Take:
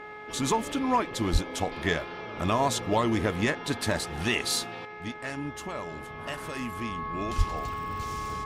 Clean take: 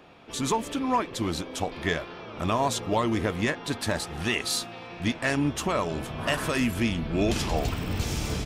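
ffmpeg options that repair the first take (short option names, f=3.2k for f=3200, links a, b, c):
-filter_complex "[0:a]bandreject=f=422.3:t=h:w=4,bandreject=f=844.6:t=h:w=4,bandreject=f=1.2669k:t=h:w=4,bandreject=f=1.6892k:t=h:w=4,bandreject=f=2.1115k:t=h:w=4,bandreject=f=1.1k:w=30,asplit=3[a][b][c];[a]afade=t=out:st=1.32:d=0.02[d];[b]highpass=f=140:w=0.5412,highpass=f=140:w=1.3066,afade=t=in:st=1.32:d=0.02,afade=t=out:st=1.44:d=0.02[e];[c]afade=t=in:st=1.44:d=0.02[f];[d][e][f]amix=inputs=3:normalize=0,asplit=3[g][h][i];[g]afade=t=out:st=7.37:d=0.02[j];[h]highpass=f=140:w=0.5412,highpass=f=140:w=1.3066,afade=t=in:st=7.37:d=0.02,afade=t=out:st=7.49:d=0.02[k];[i]afade=t=in:st=7.49:d=0.02[l];[j][k][l]amix=inputs=3:normalize=0,asetnsamples=n=441:p=0,asendcmd='4.85 volume volume 10dB',volume=0dB"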